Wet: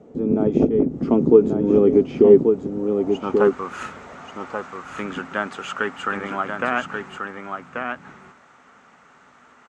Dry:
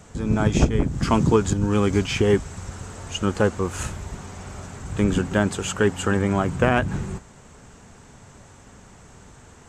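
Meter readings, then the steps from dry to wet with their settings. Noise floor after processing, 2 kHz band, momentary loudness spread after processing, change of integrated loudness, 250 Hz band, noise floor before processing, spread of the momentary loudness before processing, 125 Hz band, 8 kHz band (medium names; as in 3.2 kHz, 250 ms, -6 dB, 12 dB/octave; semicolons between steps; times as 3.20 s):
-53 dBFS, +0.5 dB, 18 LU, +2.5 dB, +2.5 dB, -48 dBFS, 16 LU, -8.5 dB, under -15 dB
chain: graphic EQ with 31 bands 100 Hz -6 dB, 160 Hz +4 dB, 250 Hz +9 dB, 1 kHz -5 dB, 1.6 kHz -8 dB, 8 kHz -4 dB; in parallel at -0.5 dB: gain riding within 4 dB; on the sum: band-pass sweep 410 Hz -> 1.4 kHz, 2.68–3.58 s; delay 1135 ms -5.5 dB; trim +3 dB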